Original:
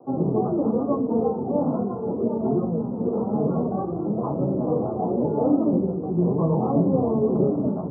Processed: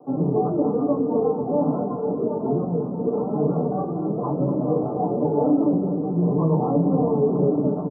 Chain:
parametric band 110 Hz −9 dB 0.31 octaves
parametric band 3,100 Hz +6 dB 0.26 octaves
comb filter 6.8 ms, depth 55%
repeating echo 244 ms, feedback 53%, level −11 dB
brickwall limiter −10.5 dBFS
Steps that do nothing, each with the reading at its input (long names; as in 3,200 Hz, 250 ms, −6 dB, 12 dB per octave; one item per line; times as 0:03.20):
parametric band 3,100 Hz: nothing at its input above 1,200 Hz